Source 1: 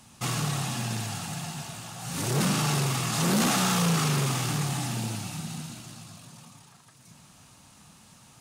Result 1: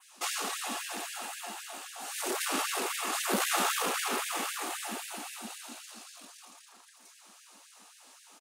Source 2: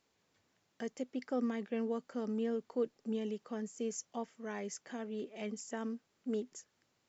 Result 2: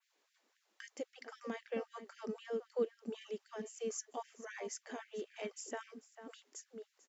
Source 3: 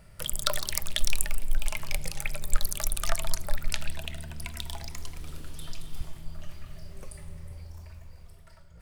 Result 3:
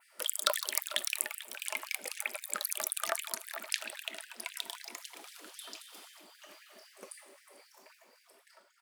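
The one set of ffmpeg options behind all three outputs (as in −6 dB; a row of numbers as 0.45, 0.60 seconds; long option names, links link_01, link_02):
-filter_complex "[0:a]asplit=2[link_01][link_02];[link_02]adelay=443.1,volume=-11dB,highshelf=frequency=4000:gain=-9.97[link_03];[link_01][link_03]amix=inputs=2:normalize=0,adynamicequalizer=threshold=0.00398:dfrequency=5300:dqfactor=1.1:tfrequency=5300:tqfactor=1.1:attack=5:release=100:ratio=0.375:range=3.5:mode=cutabove:tftype=bell,afftfilt=real='re*gte(b*sr/1024,210*pow(1600/210,0.5+0.5*sin(2*PI*3.8*pts/sr)))':imag='im*gte(b*sr/1024,210*pow(1600/210,0.5+0.5*sin(2*PI*3.8*pts/sr)))':win_size=1024:overlap=0.75"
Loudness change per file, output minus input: −5.0, −4.5, −1.5 LU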